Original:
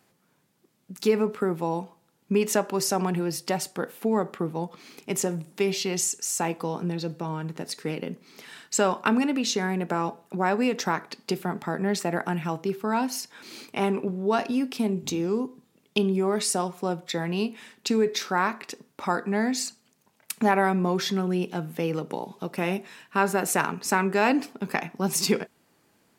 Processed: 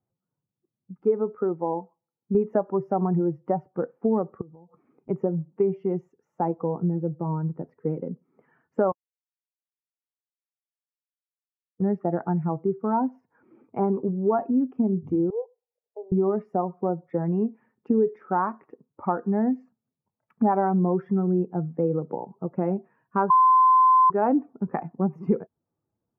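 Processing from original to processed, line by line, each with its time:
1.03–2.35 low shelf 200 Hz -10.5 dB
4.41–5.09 compressor 10:1, threshold -41 dBFS
8.92–11.8 mute
15.3–16.12 elliptic band-pass 460–930 Hz
23.3–24.1 bleep 1030 Hz -12.5 dBFS
whole clip: per-bin expansion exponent 1.5; inverse Chebyshev low-pass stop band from 3700 Hz, stop band 60 dB; compressor 2:1, threshold -31 dBFS; gain +9 dB

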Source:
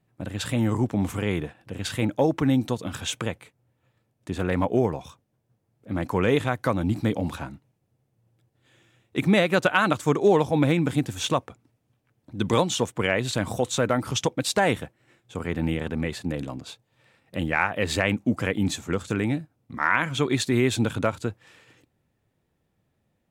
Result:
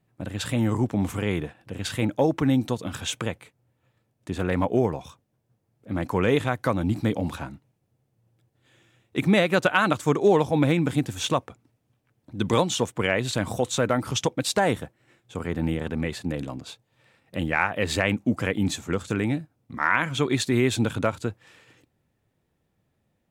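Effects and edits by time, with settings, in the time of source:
14.58–15.85 dynamic EQ 2500 Hz, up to -5 dB, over -42 dBFS, Q 1.5

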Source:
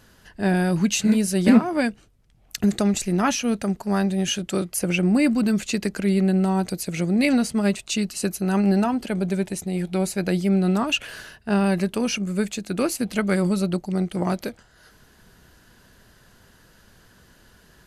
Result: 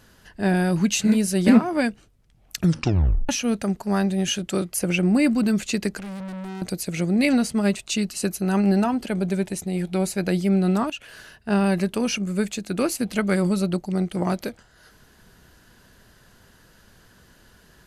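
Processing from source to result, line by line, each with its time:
2.57 tape stop 0.72 s
5.99–6.62 tube stage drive 32 dB, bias 0.65
10.9–11.53 fade in, from -13.5 dB

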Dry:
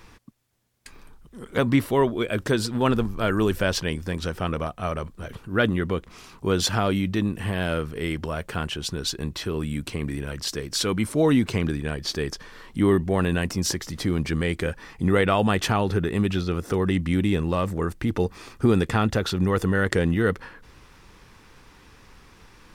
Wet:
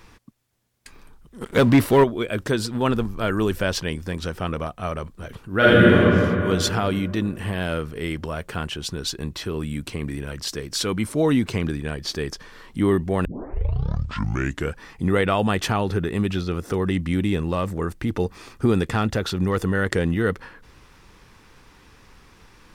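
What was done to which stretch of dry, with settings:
1.41–2.04 sample leveller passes 2
5.57–5.97 reverb throw, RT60 2.8 s, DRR -10 dB
13.25 tape start 1.54 s
18.88–19.59 overloaded stage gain 13.5 dB

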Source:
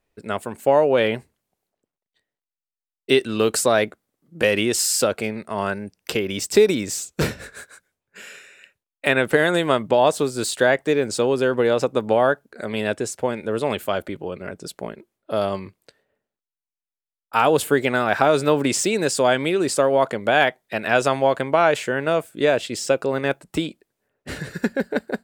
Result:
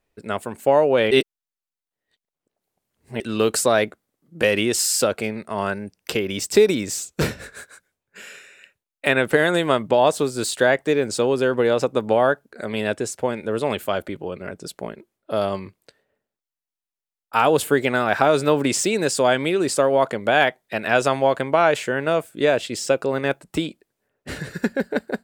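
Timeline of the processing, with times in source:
1.11–3.2 reverse

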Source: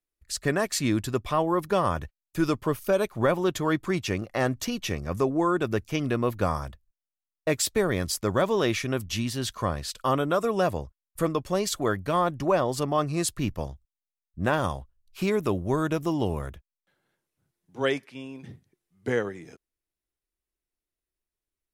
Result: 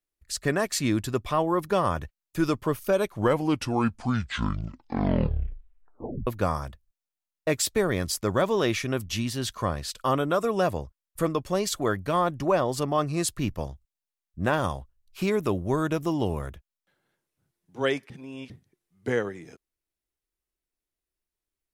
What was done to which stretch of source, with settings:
2.98 tape stop 3.29 s
18.1–18.5 reverse

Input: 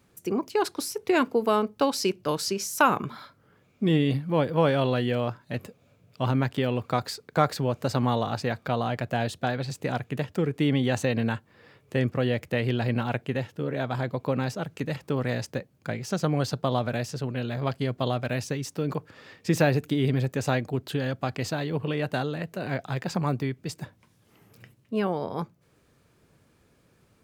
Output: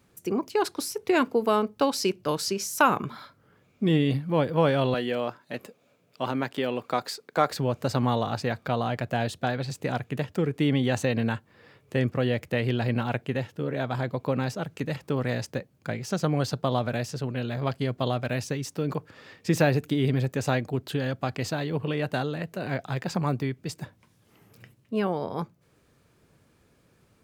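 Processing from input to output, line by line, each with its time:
4.94–7.51 HPF 250 Hz

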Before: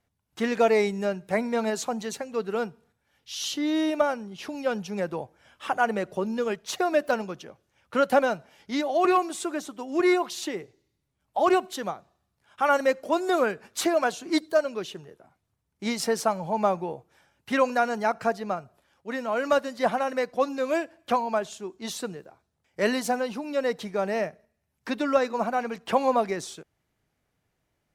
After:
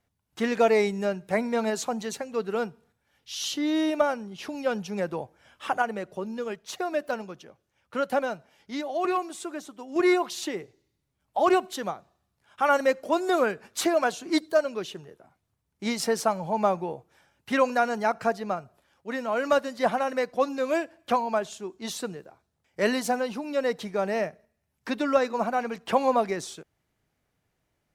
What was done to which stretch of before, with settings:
5.82–9.96 gain -5 dB

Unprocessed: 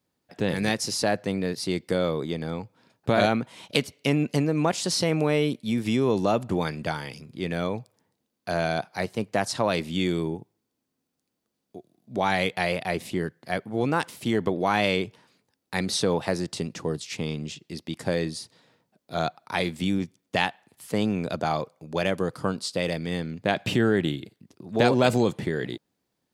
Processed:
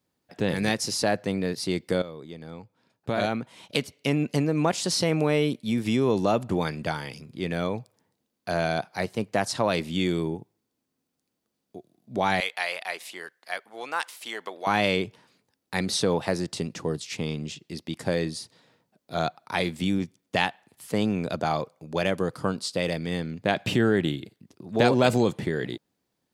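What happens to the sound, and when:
2.02–4.62 fade in, from -14.5 dB
12.4–14.67 HPF 910 Hz

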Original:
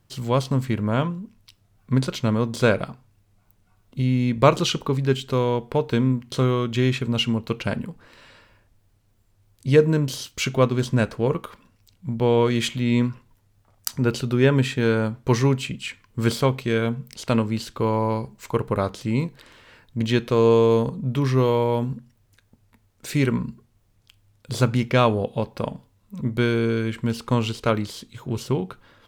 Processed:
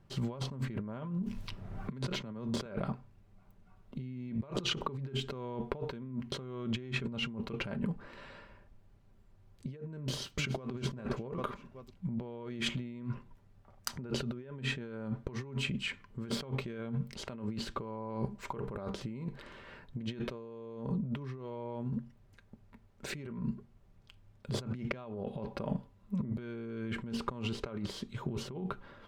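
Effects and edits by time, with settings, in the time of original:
1.23–2.66 three-band squash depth 70%
9.99–10.73 echo throw 0.39 s, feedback 30%, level -12.5 dB
whole clip: LPF 1500 Hz 6 dB/oct; comb 5.1 ms, depth 36%; negative-ratio compressor -32 dBFS, ratio -1; gain -7 dB

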